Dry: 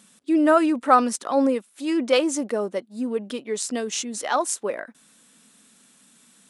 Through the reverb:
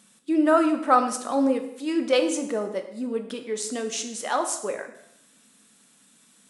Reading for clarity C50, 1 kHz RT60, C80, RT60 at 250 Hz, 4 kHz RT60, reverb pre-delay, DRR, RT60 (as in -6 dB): 9.5 dB, 0.75 s, 12.0 dB, 0.75 s, 0.75 s, 4 ms, 6.0 dB, 0.75 s